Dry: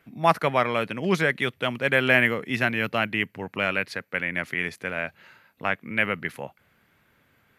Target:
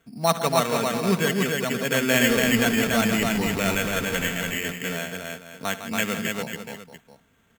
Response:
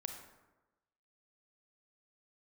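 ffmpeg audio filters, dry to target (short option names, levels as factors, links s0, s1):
-filter_complex "[0:a]asettb=1/sr,asplit=3[s0][s1][s2];[s0]atrim=end=2.154[s3];[s1]atrim=start=2.15:end=4.29,asetpts=PTS-STARTPTS,afade=t=in:d=0.004:c=qsin,afade=t=out:st=2.136:d=0.004:c=qsin,aeval=exprs='val(0)+0.5*0.0531*sgn(val(0))':c=same[s4];[s2]atrim=start=4.286[s5];[s3][s4]acrossfade=d=0.004:c1=hsin:c2=qsin[s6];[s6][s5]acrossfade=d=0.004:c1=qsin:c2=hsin,lowpass=3100,lowshelf=f=350:g=5,aecho=1:1:4.4:0.42,aecho=1:1:65|81|155|283|493|695:0.141|0.106|0.316|0.708|0.251|0.178,acrusher=samples=9:mix=1:aa=0.000001,volume=0.668"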